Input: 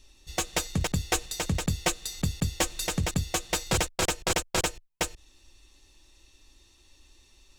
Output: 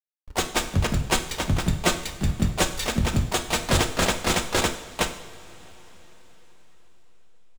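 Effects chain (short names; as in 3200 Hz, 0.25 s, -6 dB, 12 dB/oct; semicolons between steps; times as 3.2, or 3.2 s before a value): harmoniser -12 st -3 dB, +4 st -6 dB, +5 st -11 dB; backlash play -26.5 dBFS; two-slope reverb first 0.6 s, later 4.9 s, from -18 dB, DRR 6 dB; gain +2.5 dB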